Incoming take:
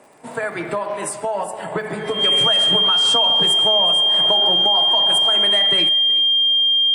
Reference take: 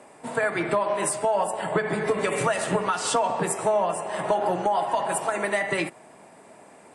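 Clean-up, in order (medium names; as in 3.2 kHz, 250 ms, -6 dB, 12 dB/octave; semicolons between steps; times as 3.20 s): de-click; band-stop 3.2 kHz, Q 30; inverse comb 373 ms -19.5 dB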